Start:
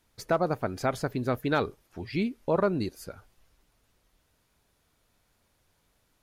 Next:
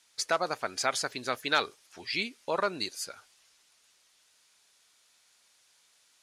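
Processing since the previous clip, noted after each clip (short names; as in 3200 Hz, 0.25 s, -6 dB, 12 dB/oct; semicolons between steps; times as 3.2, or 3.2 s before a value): weighting filter ITU-R 468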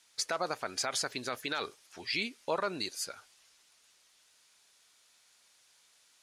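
limiter -20.5 dBFS, peak gain reduction 11 dB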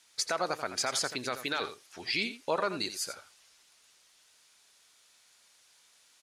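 echo 85 ms -11.5 dB; gain +2 dB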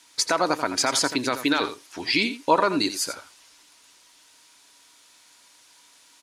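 small resonant body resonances 290/960 Hz, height 12 dB, ringing for 70 ms; gain +8 dB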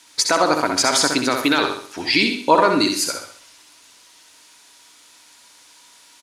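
feedback echo 65 ms, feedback 41%, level -6 dB; gain +4.5 dB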